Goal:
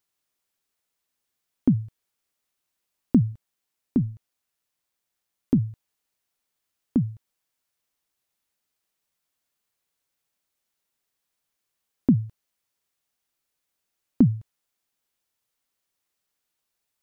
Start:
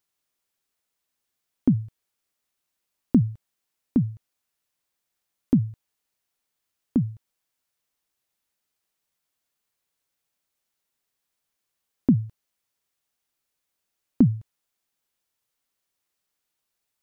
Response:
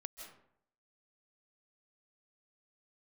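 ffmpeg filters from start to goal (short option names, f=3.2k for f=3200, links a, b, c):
-filter_complex "[0:a]asettb=1/sr,asplit=3[a][b][c];[a]atrim=end=3.324[d];[b]atrim=start=3.32:end=5.58,asetpts=PTS-STARTPTS,afade=t=in:d=0.004:c=qsin,afade=t=out:st=2.256:d=0.004:c=qsin,tremolo=f=120:d=0.261[e];[c]atrim=start=5.576[f];[d][e]acrossfade=d=0.004:c1=hsin:c2=qsin[g];[g][f]acrossfade=d=0.004:c1=qsin:c2=hsin"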